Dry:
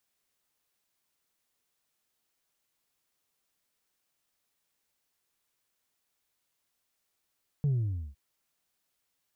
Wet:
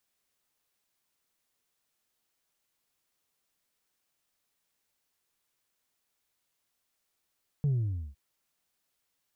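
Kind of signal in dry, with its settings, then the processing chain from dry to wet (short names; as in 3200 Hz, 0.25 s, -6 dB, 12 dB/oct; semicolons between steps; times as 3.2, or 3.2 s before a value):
sub drop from 150 Hz, over 0.51 s, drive 1.5 dB, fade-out 0.47 s, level -24 dB
tracing distortion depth 0.021 ms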